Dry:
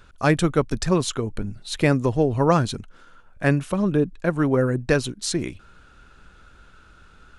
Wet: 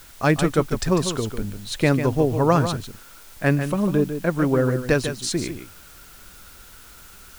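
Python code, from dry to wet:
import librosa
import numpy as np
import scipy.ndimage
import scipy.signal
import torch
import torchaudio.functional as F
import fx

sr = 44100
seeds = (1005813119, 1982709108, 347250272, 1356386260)

y = fx.quant_dither(x, sr, seeds[0], bits=8, dither='triangular')
y = y + 10.0 ** (-9.0 / 20.0) * np.pad(y, (int(148 * sr / 1000.0), 0))[:len(y)]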